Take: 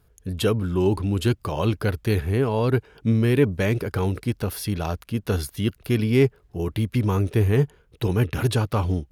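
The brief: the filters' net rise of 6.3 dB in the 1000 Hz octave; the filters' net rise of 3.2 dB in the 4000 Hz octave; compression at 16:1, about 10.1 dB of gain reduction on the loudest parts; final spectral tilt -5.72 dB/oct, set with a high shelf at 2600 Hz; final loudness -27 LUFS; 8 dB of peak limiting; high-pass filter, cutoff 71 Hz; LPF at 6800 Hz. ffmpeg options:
-af "highpass=71,lowpass=6.8k,equalizer=f=1k:t=o:g=8,highshelf=f=2.6k:g=-5.5,equalizer=f=4k:t=o:g=8.5,acompressor=threshold=-23dB:ratio=16,volume=5dB,alimiter=limit=-15dB:level=0:latency=1"

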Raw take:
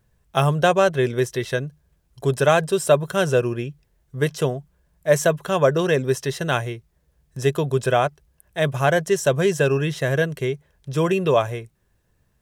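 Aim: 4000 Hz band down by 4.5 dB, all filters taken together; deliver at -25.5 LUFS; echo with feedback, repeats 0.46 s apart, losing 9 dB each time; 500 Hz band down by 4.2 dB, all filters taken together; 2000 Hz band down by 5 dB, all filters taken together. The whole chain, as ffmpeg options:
-af "equalizer=f=500:t=o:g=-5,equalizer=f=2k:t=o:g=-6,equalizer=f=4k:t=o:g=-3.5,aecho=1:1:460|920|1380|1840:0.355|0.124|0.0435|0.0152,volume=-1dB"

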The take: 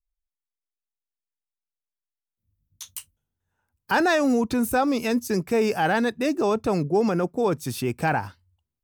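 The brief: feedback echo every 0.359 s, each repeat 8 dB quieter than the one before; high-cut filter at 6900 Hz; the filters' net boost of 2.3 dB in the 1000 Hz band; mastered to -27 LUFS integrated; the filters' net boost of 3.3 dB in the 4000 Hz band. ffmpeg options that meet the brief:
-af "lowpass=6.9k,equalizer=f=1k:t=o:g=3,equalizer=f=4k:t=o:g=4.5,aecho=1:1:359|718|1077|1436|1795:0.398|0.159|0.0637|0.0255|0.0102,volume=-5dB"

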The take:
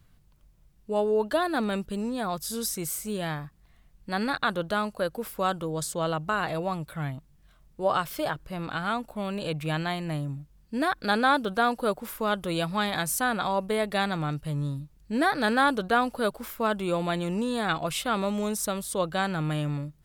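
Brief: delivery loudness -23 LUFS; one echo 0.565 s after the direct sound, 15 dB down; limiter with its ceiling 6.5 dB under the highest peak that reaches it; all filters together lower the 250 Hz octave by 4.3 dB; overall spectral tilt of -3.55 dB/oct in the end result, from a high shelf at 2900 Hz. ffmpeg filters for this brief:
-af "equalizer=f=250:t=o:g=-6,highshelf=f=2.9k:g=7.5,alimiter=limit=-15.5dB:level=0:latency=1,aecho=1:1:565:0.178,volume=5.5dB"

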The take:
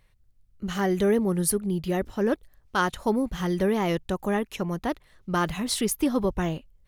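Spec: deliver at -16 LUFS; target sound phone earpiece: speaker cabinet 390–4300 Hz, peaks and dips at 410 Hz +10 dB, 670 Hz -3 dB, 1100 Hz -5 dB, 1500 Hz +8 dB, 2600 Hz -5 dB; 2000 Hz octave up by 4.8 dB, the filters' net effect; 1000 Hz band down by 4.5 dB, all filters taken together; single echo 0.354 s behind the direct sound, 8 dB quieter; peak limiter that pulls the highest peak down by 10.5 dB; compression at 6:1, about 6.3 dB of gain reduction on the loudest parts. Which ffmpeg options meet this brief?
-af "equalizer=f=1k:t=o:g=-7,equalizer=f=2k:t=o:g=4,acompressor=threshold=-26dB:ratio=6,alimiter=level_in=4dB:limit=-24dB:level=0:latency=1,volume=-4dB,highpass=390,equalizer=f=410:t=q:w=4:g=10,equalizer=f=670:t=q:w=4:g=-3,equalizer=f=1.1k:t=q:w=4:g=-5,equalizer=f=1.5k:t=q:w=4:g=8,equalizer=f=2.6k:t=q:w=4:g=-5,lowpass=f=4.3k:w=0.5412,lowpass=f=4.3k:w=1.3066,aecho=1:1:354:0.398,volume=21dB"

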